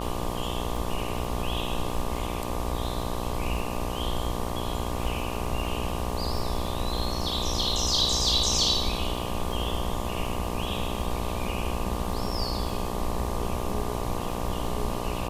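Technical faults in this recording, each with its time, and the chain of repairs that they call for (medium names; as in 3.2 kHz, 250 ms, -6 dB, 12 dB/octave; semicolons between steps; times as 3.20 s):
buzz 60 Hz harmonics 20 -33 dBFS
crackle 34 per s -34 dBFS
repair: de-click; de-hum 60 Hz, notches 20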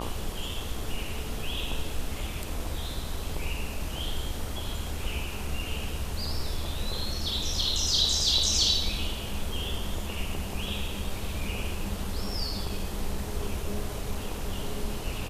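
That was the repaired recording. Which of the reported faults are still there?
nothing left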